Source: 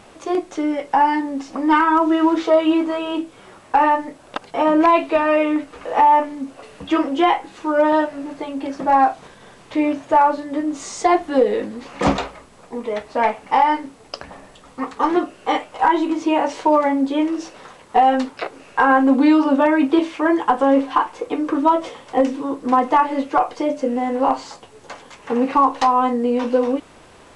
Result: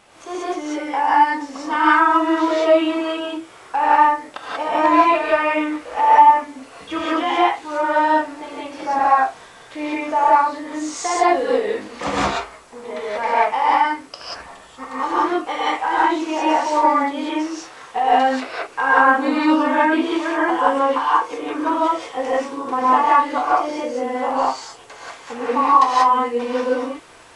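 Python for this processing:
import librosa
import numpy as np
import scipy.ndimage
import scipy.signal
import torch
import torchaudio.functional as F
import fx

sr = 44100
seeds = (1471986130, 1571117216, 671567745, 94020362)

y = fx.low_shelf(x, sr, hz=440.0, db=-11.0)
y = fx.rev_gated(y, sr, seeds[0], gate_ms=210, shape='rising', drr_db=-8.0)
y = F.gain(torch.from_numpy(y), -4.5).numpy()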